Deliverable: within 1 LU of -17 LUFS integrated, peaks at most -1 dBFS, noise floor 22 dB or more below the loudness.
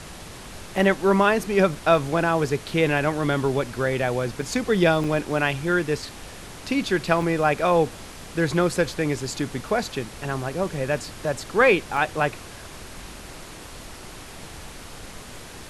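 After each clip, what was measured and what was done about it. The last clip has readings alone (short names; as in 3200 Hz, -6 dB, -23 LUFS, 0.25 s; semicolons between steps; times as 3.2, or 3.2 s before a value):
dropouts 6; longest dropout 2.6 ms; noise floor -41 dBFS; noise floor target -45 dBFS; loudness -23.0 LUFS; peak -5.0 dBFS; loudness target -17.0 LUFS
-> interpolate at 1.75/4.41/5.04/6.02/7.22/11.97, 2.6 ms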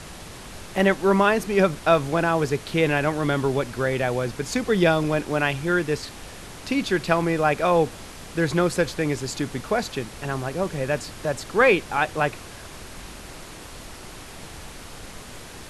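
dropouts 0; noise floor -41 dBFS; noise floor target -45 dBFS
-> noise print and reduce 6 dB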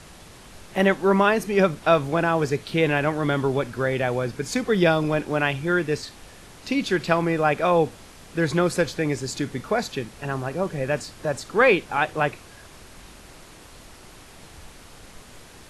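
noise floor -47 dBFS; loudness -23.0 LUFS; peak -4.5 dBFS; loudness target -17.0 LUFS
-> gain +6 dB; limiter -1 dBFS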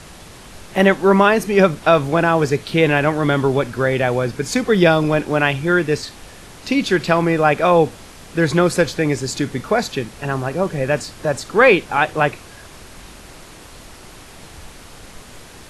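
loudness -17.5 LUFS; peak -1.0 dBFS; noise floor -41 dBFS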